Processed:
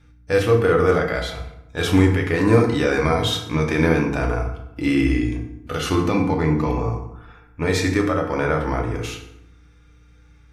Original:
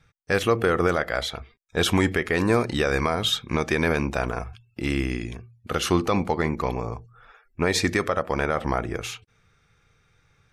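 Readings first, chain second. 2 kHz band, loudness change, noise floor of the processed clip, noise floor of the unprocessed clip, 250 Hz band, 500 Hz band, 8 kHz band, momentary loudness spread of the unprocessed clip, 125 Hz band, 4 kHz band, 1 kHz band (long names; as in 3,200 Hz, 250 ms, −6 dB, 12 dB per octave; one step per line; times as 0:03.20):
+1.5 dB, +4.0 dB, −51 dBFS, −65 dBFS, +6.0 dB, +4.5 dB, −1.0 dB, 11 LU, +7.0 dB, −0.5 dB, +1.5 dB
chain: mains hum 60 Hz, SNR 34 dB
harmonic and percussive parts rebalanced harmonic +9 dB
feedback delay network reverb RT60 0.83 s, low-frequency decay 1.3×, high-frequency decay 0.65×, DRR 1 dB
level −5 dB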